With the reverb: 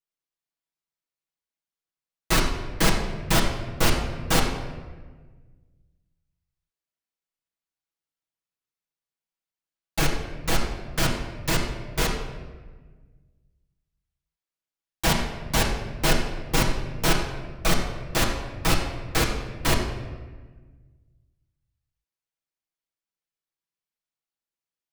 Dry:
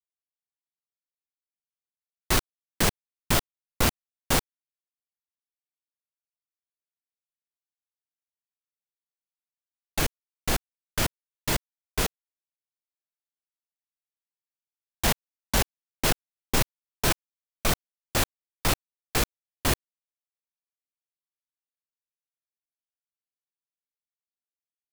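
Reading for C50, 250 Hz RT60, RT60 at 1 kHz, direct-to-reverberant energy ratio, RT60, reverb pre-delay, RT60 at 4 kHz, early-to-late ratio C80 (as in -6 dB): 5.0 dB, 1.9 s, 1.3 s, -5.0 dB, 1.4 s, 6 ms, 0.90 s, 6.5 dB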